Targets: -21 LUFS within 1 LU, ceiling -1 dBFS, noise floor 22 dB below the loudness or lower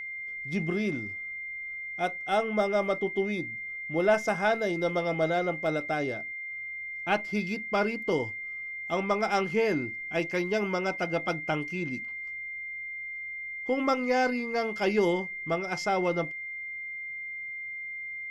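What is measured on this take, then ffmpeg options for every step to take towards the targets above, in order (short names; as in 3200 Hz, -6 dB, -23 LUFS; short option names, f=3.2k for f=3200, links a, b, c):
steady tone 2100 Hz; tone level -35 dBFS; loudness -30.0 LUFS; peak -13.0 dBFS; loudness target -21.0 LUFS
-> -af "bandreject=f=2.1k:w=30"
-af "volume=9dB"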